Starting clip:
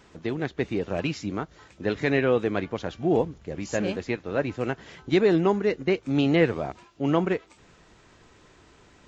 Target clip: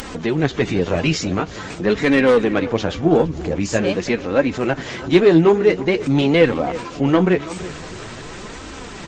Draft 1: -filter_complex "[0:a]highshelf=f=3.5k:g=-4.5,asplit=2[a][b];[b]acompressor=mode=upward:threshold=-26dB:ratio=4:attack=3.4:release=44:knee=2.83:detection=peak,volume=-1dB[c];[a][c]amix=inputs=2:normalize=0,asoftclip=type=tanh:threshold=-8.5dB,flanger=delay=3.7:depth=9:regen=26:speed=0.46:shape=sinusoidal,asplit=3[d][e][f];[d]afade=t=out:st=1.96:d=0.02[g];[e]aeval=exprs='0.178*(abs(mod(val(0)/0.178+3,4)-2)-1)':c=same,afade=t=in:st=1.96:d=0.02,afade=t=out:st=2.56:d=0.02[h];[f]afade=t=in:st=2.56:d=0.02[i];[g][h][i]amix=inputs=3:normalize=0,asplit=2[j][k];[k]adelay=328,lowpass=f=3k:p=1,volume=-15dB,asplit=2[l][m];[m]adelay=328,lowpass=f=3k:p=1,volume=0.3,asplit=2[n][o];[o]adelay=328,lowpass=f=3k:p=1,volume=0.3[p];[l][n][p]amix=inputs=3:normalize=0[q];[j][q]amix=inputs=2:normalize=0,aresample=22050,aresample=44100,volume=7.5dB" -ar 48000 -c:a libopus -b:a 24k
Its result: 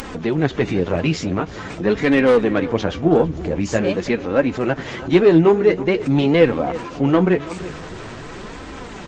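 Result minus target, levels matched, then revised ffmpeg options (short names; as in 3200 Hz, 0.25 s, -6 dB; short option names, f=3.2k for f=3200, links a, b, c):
8000 Hz band -5.0 dB
-filter_complex "[0:a]highshelf=f=3.5k:g=3.5,asplit=2[a][b];[b]acompressor=mode=upward:threshold=-26dB:ratio=4:attack=3.4:release=44:knee=2.83:detection=peak,volume=-1dB[c];[a][c]amix=inputs=2:normalize=0,asoftclip=type=tanh:threshold=-8.5dB,flanger=delay=3.7:depth=9:regen=26:speed=0.46:shape=sinusoidal,asplit=3[d][e][f];[d]afade=t=out:st=1.96:d=0.02[g];[e]aeval=exprs='0.178*(abs(mod(val(0)/0.178+3,4)-2)-1)':c=same,afade=t=in:st=1.96:d=0.02,afade=t=out:st=2.56:d=0.02[h];[f]afade=t=in:st=2.56:d=0.02[i];[g][h][i]amix=inputs=3:normalize=0,asplit=2[j][k];[k]adelay=328,lowpass=f=3k:p=1,volume=-15dB,asplit=2[l][m];[m]adelay=328,lowpass=f=3k:p=1,volume=0.3,asplit=2[n][o];[o]adelay=328,lowpass=f=3k:p=1,volume=0.3[p];[l][n][p]amix=inputs=3:normalize=0[q];[j][q]amix=inputs=2:normalize=0,aresample=22050,aresample=44100,volume=7.5dB" -ar 48000 -c:a libopus -b:a 24k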